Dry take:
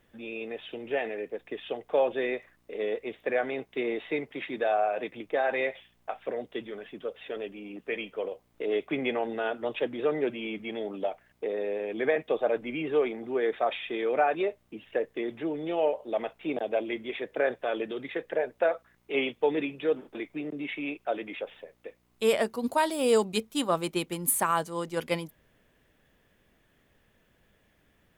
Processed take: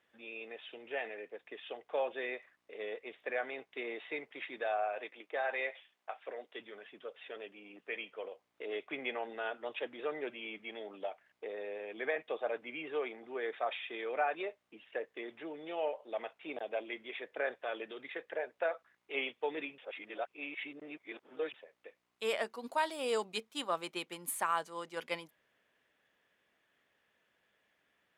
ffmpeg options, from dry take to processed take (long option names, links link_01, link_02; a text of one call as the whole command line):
ffmpeg -i in.wav -filter_complex "[0:a]asettb=1/sr,asplit=3[link_01][link_02][link_03];[link_01]atrim=end=4.984[link_04];[link_02]atrim=start=4.98:end=6.6,asetpts=PTS-STARTPTS,afade=type=in:duration=0.004:curve=qsin,afade=type=out:start_time=1.616:duration=0.004:curve=qsin,highpass=290[link_05];[link_03]atrim=start=6.596[link_06];[link_04][link_05]acrossfade=duration=0.004:curve1=hsin:curve2=qsin[link_07];[link_07][link_06]acrossfade=duration=0.004:curve1=qsin:curve2=hsin,asplit=3[link_08][link_09][link_10];[link_08]atrim=end=19.782[link_11];[link_09]atrim=start=19.778:end=21.542,asetpts=PTS-STARTPTS,areverse[link_12];[link_10]atrim=start=21.538[link_13];[link_11][link_12]acrossfade=duration=0.004:curve1=hsin:curve2=hsin[link_14];[link_14][link_13]acrossfade=duration=0.004:curve1=hsin:curve2=hsin,highpass=frequency=1200:poles=1,aemphasis=mode=reproduction:type=50kf,volume=-2dB" out.wav